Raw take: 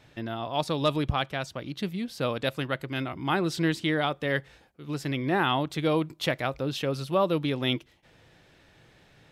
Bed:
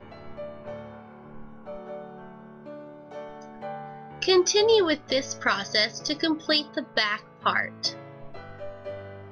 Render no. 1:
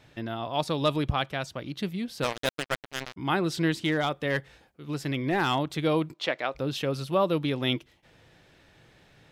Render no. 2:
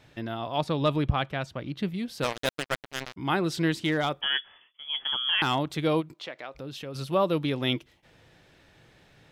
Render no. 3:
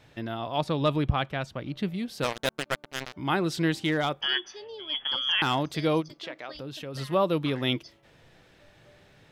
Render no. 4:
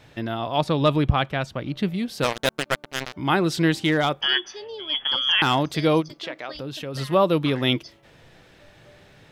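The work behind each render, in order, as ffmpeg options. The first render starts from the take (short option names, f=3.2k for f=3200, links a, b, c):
-filter_complex "[0:a]asplit=3[a][b][c];[a]afade=t=out:st=2.22:d=0.02[d];[b]acrusher=bits=3:mix=0:aa=0.5,afade=t=in:st=2.22:d=0.02,afade=t=out:st=3.16:d=0.02[e];[c]afade=t=in:st=3.16:d=0.02[f];[d][e][f]amix=inputs=3:normalize=0,asettb=1/sr,asplit=3[g][h][i];[g]atrim=end=3.794[j];[h]atrim=start=3.79:end=5.59,asetpts=PTS-STARTPTS,afade=t=in:d=0.004:c=qsin,afade=t=out:st=1.796:d=0.004:c=qsin,asoftclip=type=hard:threshold=-18.5dB[k];[i]atrim=start=5.586[l];[j][k]acrossfade=d=0.004:c1=hsin:c2=qsin[m];[m][l]acrossfade=d=0.004:c1=qsin:c2=hsin,asplit=3[n][o][p];[n]afade=t=out:st=6.13:d=0.02[q];[o]highpass=350,lowpass=5.3k,afade=t=in:st=6.13:d=0.02,afade=t=out:st=6.54:d=0.02[r];[p]afade=t=in:st=6.54:d=0.02[s];[q][r][s]amix=inputs=3:normalize=0"
-filter_complex "[0:a]asettb=1/sr,asplit=3[a][b][c];[a]atrim=end=0.584[d];[b]atrim=start=0.58:end=1.94,asetpts=PTS-STARTPTS,afade=t=in:d=0.004:c=qsin,afade=t=out:st=1.356:d=0.004:c=qsin,bass=f=250:g=3,treble=f=4k:g=-8[e];[c]atrim=start=1.936[f];[d][e]acrossfade=d=0.004:c1=hsin:c2=qsin[g];[g][f]acrossfade=d=0.004:c1=qsin:c2=hsin,asettb=1/sr,asplit=3[h][i][j];[h]atrim=end=4.214[k];[i]atrim=start=4.21:end=5.42,asetpts=PTS-STARTPTS,afade=t=in:d=0.004:c=qsin,afade=t=out:st=1.206:d=0.004:c=qsin,lowpass=f=3k:t=q:w=0.5098,lowpass=f=3k:t=q:w=0.6013,lowpass=f=3k:t=q:w=0.9,lowpass=f=3k:t=q:w=2.563,afreqshift=-3500[l];[j]atrim=start=5.416[m];[k][l]acrossfade=d=0.004:c1=hsin:c2=qsin[n];[n][m]acrossfade=d=0.004:c1=qsin:c2=hsin,asplit=3[o][p][q];[o]afade=t=out:st=6:d=0.02[r];[p]acompressor=threshold=-42dB:ratio=2:attack=3.2:release=140:knee=1:detection=peak,afade=t=in:st=6:d=0.02,afade=t=out:st=6.94:d=0.02[s];[q]afade=t=in:st=6.94:d=0.02[t];[r][s][t]amix=inputs=3:normalize=0"
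-filter_complex "[1:a]volume=-23dB[a];[0:a][a]amix=inputs=2:normalize=0"
-af "volume=5.5dB"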